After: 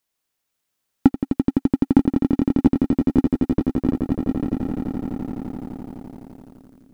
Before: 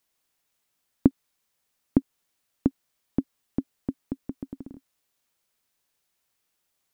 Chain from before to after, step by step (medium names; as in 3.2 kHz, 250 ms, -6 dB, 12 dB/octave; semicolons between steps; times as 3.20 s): echo with a slow build-up 85 ms, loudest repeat 8, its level -10 dB; waveshaping leveller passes 2; trim +1.5 dB